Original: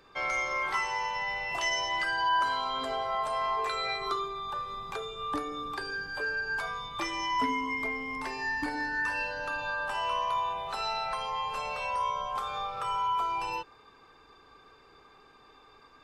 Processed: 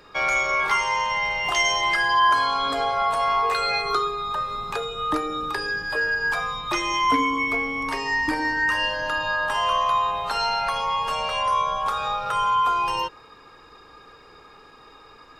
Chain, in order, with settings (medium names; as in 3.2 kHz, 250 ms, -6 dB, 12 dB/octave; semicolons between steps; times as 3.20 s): speed mistake 24 fps film run at 25 fps; trim +8.5 dB